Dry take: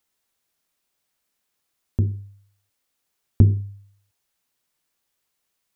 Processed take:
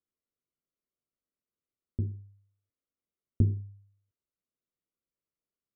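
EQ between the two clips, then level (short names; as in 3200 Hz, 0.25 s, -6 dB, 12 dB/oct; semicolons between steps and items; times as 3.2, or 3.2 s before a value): running mean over 52 samples; low shelf 240 Hz -7 dB; -4.0 dB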